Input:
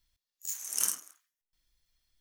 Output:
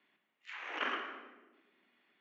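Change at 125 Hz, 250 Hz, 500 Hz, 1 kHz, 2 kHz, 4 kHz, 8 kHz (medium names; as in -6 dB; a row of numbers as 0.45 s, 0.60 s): no reading, +10.5 dB, +13.5 dB, +12.5 dB, +13.0 dB, -2.0 dB, under -35 dB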